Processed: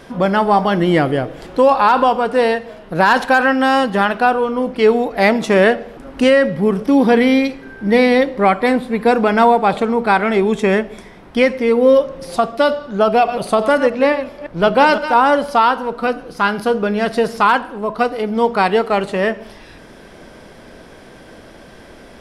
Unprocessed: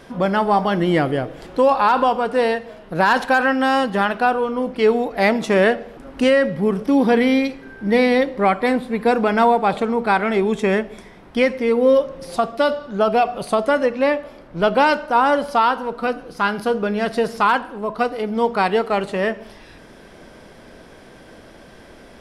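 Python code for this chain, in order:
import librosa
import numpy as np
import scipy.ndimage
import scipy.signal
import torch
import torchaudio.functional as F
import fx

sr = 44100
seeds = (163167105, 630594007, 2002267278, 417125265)

y = fx.reverse_delay(x, sr, ms=172, wet_db=-10, at=(13.09, 15.14))
y = y * 10.0 ** (3.5 / 20.0)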